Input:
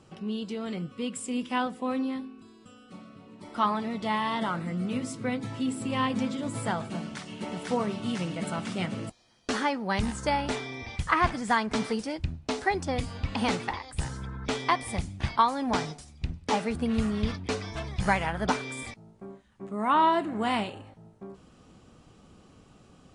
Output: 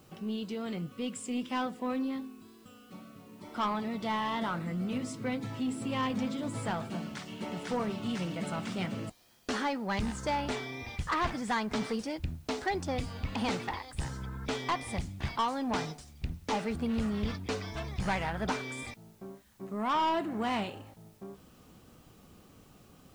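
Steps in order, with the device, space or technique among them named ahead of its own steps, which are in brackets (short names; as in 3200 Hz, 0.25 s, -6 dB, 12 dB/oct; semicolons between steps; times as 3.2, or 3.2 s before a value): compact cassette (soft clip -22.5 dBFS, distortion -12 dB; LPF 8700 Hz; wow and flutter 27 cents; white noise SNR 33 dB); gain -2 dB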